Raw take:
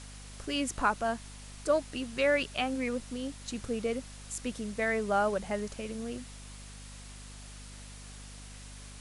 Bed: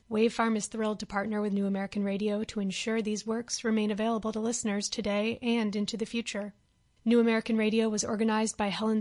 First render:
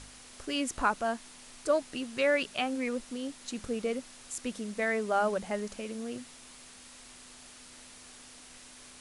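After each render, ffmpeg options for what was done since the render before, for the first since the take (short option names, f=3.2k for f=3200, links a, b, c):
-af "bandreject=f=50:t=h:w=4,bandreject=f=100:t=h:w=4,bandreject=f=150:t=h:w=4,bandreject=f=200:t=h:w=4"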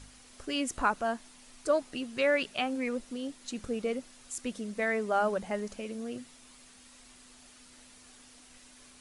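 -af "afftdn=nr=6:nf=-52"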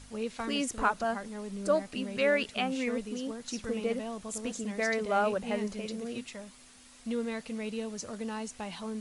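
-filter_complex "[1:a]volume=-9.5dB[a];[0:a][a]amix=inputs=2:normalize=0"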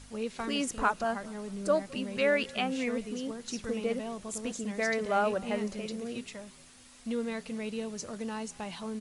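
-filter_complex "[0:a]asplit=4[a][b][c][d];[b]adelay=209,afreqshift=-43,volume=-23dB[e];[c]adelay=418,afreqshift=-86,volume=-30.3dB[f];[d]adelay=627,afreqshift=-129,volume=-37.7dB[g];[a][e][f][g]amix=inputs=4:normalize=0"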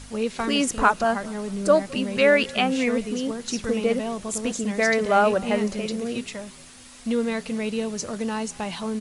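-af "volume=9dB"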